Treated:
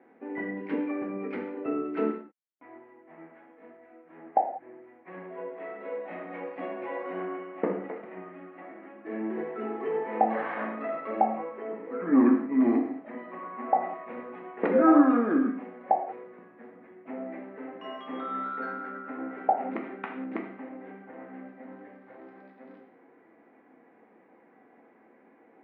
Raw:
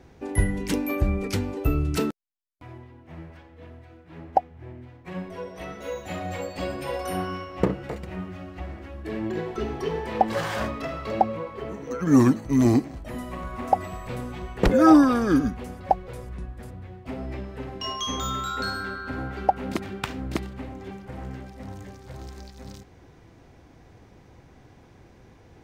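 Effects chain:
elliptic band-pass filter 240–2,100 Hz, stop band 50 dB
reverb whose tail is shaped and stops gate 220 ms falling, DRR 1 dB
level −5 dB

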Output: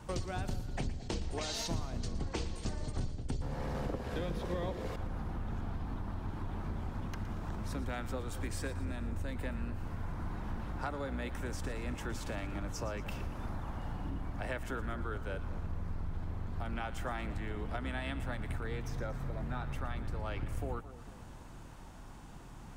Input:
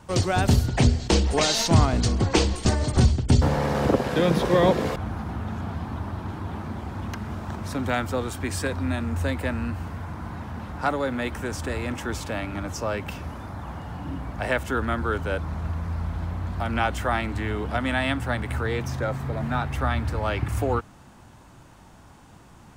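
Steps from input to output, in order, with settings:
sub-octave generator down 2 octaves, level +3 dB
downward compressor 5 to 1, threshold −32 dBFS, peak gain reduction 21.5 dB
on a send: echo with a time of its own for lows and highs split 800 Hz, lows 222 ms, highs 116 ms, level −14 dB
on the sum: level −3.5 dB

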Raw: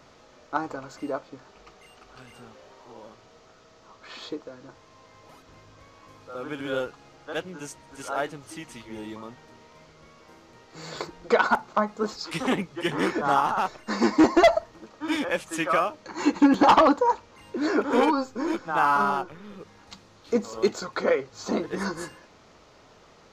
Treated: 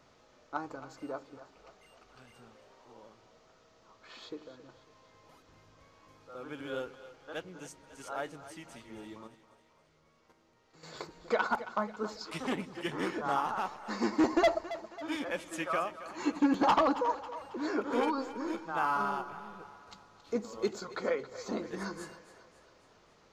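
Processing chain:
0:09.27–0:10.94: output level in coarse steps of 10 dB
echo with a time of its own for lows and highs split 420 Hz, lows 89 ms, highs 273 ms, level −14 dB
level −9 dB

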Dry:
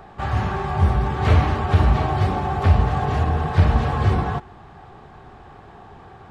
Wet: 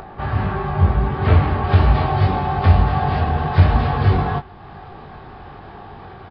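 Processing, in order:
high-shelf EQ 3,700 Hz −10.5 dB, from 0:01.64 +2 dB
upward compression, threshold −33 dBFS
double-tracking delay 21 ms −7 dB
downsampling to 11,025 Hz
level +1.5 dB

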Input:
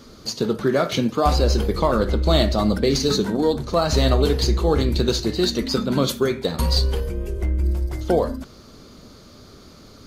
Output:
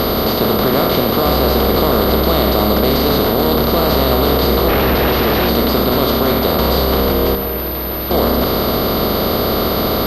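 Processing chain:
compressor on every frequency bin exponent 0.2
in parallel at +1 dB: brickwall limiter −6.5 dBFS, peak gain reduction 9.5 dB
on the sum: high-shelf EQ 3,200 Hz +9.5 dB
0:07.35–0:08.11: gain into a clipping stage and back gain 12.5 dB
on a send: echo through a band-pass that steps 114 ms, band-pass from 180 Hz, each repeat 1.4 octaves, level −6.5 dB
0:04.68–0:05.49: on the sum: comparator with hysteresis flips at −12.5 dBFS
high-frequency loss of the air 220 metres
switching amplifier with a slow clock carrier 13,000 Hz
level −7.5 dB

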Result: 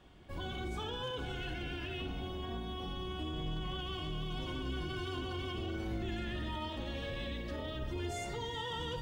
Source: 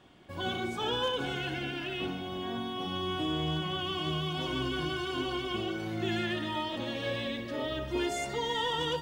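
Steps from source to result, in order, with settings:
sub-octave generator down 2 octaves, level +4 dB
brickwall limiter −28 dBFS, peak gain reduction 9 dB
flutter between parallel walls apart 7.8 metres, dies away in 0.23 s
level −3.5 dB

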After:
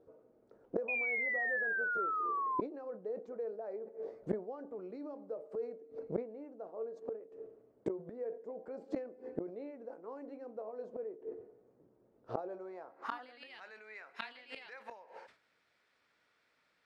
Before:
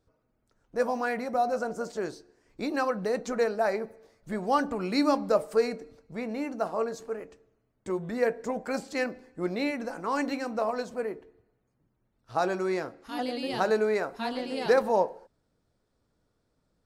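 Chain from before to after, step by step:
brickwall limiter −20.5 dBFS, peak gain reduction 9 dB
band-pass filter sweep 450 Hz → 2,200 Hz, 0:12.41–0:13.58
gate with flip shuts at −38 dBFS, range −25 dB
sound drawn into the spectrogram fall, 0:00.88–0:02.61, 1,000–2,500 Hz −51 dBFS
level that may fall only so fast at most 150 dB per second
level +16 dB

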